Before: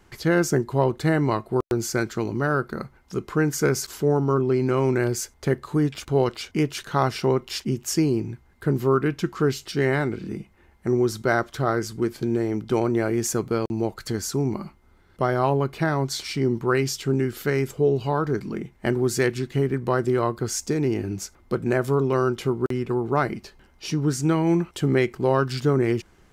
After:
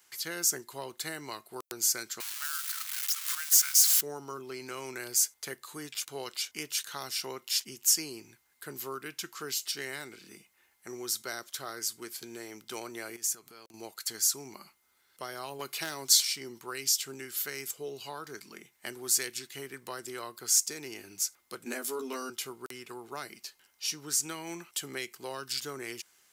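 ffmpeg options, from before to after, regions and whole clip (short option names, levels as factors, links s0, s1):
-filter_complex "[0:a]asettb=1/sr,asplit=3[s0][s1][s2];[s0]atrim=end=2.204[s3];[s1]atrim=start=2.2:end=4.01,asetpts=PTS-STARTPTS,afade=t=in:d=0.004:c=qsin,afade=t=out:st=1.806:d=0.004:c=qsin,aeval=exprs='val(0)+0.5*0.0501*sgn(val(0))':c=same,highpass=f=1200:w=0.5412,highpass=f=1200:w=1.3066[s4];[s2]atrim=start=4.006[s5];[s3][s4]acrossfade=d=0.004:c1=hsin:c2=qsin[s6];[s6][s5]acrossfade=d=0.004:c1=qsin:c2=hsin,asettb=1/sr,asplit=3[s7][s8][s9];[s7]atrim=end=13.164[s10];[s8]atrim=start=13.16:end=13.74,asetpts=PTS-STARTPTS,afade=t=in:d=0.004:c=qsin,afade=t=out:st=0.576:d=0.004:c=qsin,acompressor=threshold=0.0316:ratio=16:attack=3.2:release=140:knee=1:detection=peak,bandreject=f=520:w=9.1[s11];[s9]atrim=start=13.736[s12];[s10][s11]acrossfade=d=0.004:c1=hsin:c2=qsin[s13];[s13][s12]acrossfade=d=0.004:c1=qsin:c2=hsin,asettb=1/sr,asplit=3[s14][s15][s16];[s14]atrim=end=15.594[s17];[s15]atrim=start=15.59:end=16.25,asetpts=PTS-STARTPTS,afade=t=in:d=0.004:c=qsin,afade=t=out:st=0.656:d=0.004:c=qsin,highpass=f=220:p=1,acontrast=57,asoftclip=type=hard:threshold=0.398[s18];[s16]atrim=start=16.246[s19];[s17][s18]acrossfade=d=0.004:c1=hsin:c2=qsin[s20];[s20][s19]acrossfade=d=0.004:c1=qsin:c2=hsin,asettb=1/sr,asplit=3[s21][s22][s23];[s21]atrim=end=21.654[s24];[s22]atrim=start=21.65:end=22.3,asetpts=PTS-STARTPTS,afade=t=in:d=0.004:c=qsin,afade=t=out:st=0.646:d=0.004:c=qsin,lowshelf=f=170:t=q:w=3:g=-10.5,asplit=2[s25][s26];[s26]adelay=12,volume=0.794[s27];[s25][s27]amix=inputs=2:normalize=0,atrim=end_sample=28665[s28];[s23]atrim=start=22.296[s29];[s24][s28]acrossfade=d=0.004:c1=hsin:c2=qsin[s30];[s30][s29]acrossfade=d=0.004:c1=qsin:c2=hsin,aderivative,acrossover=split=460|3000[s31][s32][s33];[s32]acompressor=threshold=0.00631:ratio=6[s34];[s31][s34][s33]amix=inputs=3:normalize=0,volume=1.88"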